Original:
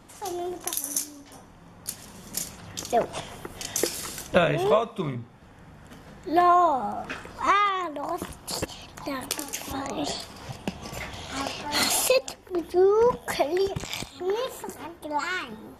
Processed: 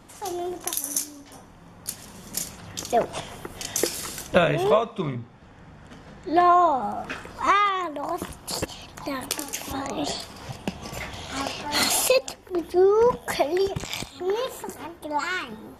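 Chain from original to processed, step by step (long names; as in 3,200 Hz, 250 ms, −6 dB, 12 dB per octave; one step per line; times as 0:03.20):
0:04.71–0:06.82: low-pass filter 7,400 Hz 12 dB per octave
level +1.5 dB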